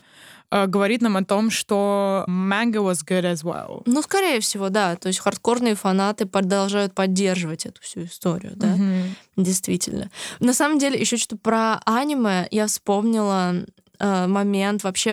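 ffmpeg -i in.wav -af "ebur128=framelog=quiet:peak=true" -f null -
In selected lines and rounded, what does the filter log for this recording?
Integrated loudness:
  I:         -21.4 LUFS
  Threshold: -31.6 LUFS
Loudness range:
  LRA:         2.2 LU
  Threshold: -41.6 LUFS
  LRA low:   -22.9 LUFS
  LRA high:  -20.7 LUFS
True peak:
  Peak:       -5.0 dBFS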